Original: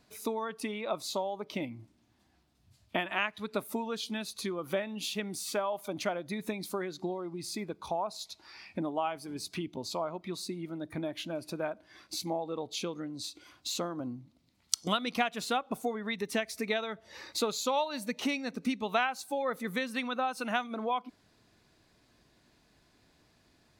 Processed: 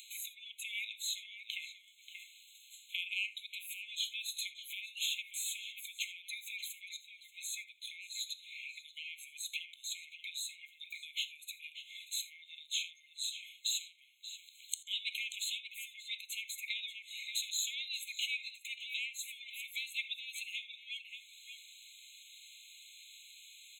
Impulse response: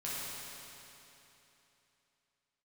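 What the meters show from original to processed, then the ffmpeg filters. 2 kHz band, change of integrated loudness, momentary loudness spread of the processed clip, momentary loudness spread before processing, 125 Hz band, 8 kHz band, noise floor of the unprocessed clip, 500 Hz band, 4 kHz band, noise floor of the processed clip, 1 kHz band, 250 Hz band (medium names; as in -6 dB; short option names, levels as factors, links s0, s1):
-3.5 dB, -5.0 dB, 16 LU, 8 LU, under -40 dB, +0.5 dB, -68 dBFS, under -40 dB, +1.5 dB, -62 dBFS, under -40 dB, under -40 dB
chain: -filter_complex "[0:a]acrossover=split=260|2400[s0][s1][s2];[s1]asoftclip=type=tanh:threshold=0.0282[s3];[s2]acompressor=mode=upward:threshold=0.00501:ratio=2.5[s4];[s0][s3][s4]amix=inputs=3:normalize=0,asplit=2[s5][s6];[s6]adelay=583.1,volume=0.398,highshelf=f=4000:g=-13.1[s7];[s5][s7]amix=inputs=2:normalize=0,acompressor=threshold=0.0178:ratio=6,asplit=2[s8][s9];[1:a]atrim=start_sample=2205,atrim=end_sample=3969[s10];[s9][s10]afir=irnorm=-1:irlink=0,volume=0.299[s11];[s8][s11]amix=inputs=2:normalize=0,afftfilt=real='re*eq(mod(floor(b*sr/1024/2100),2),1)':imag='im*eq(mod(floor(b*sr/1024/2100),2),1)':win_size=1024:overlap=0.75,volume=1.78"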